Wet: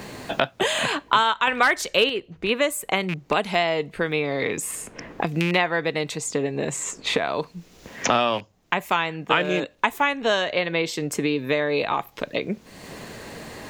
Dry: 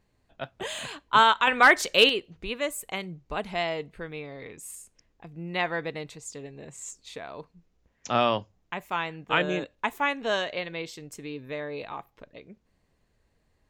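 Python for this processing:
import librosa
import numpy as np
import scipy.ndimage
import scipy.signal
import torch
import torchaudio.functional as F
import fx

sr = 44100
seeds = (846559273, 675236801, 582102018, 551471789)

y = fx.rattle_buzz(x, sr, strikes_db=-37.0, level_db=-31.0)
y = fx.low_shelf(y, sr, hz=77.0, db=-8.5)
y = fx.band_squash(y, sr, depth_pct=100)
y = y * 10.0 ** (6.5 / 20.0)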